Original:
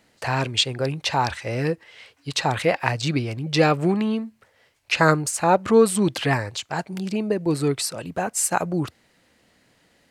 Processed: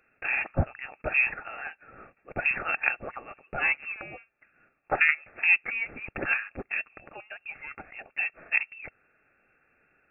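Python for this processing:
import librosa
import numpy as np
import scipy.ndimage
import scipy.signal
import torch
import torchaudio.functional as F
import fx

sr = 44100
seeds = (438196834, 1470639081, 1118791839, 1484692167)

y = scipy.signal.sosfilt(scipy.signal.cheby1(6, 3, 690.0, 'highpass', fs=sr, output='sos'), x)
y = fx.notch(y, sr, hz=2400.0, q=5.4)
y = fx.freq_invert(y, sr, carrier_hz=3400)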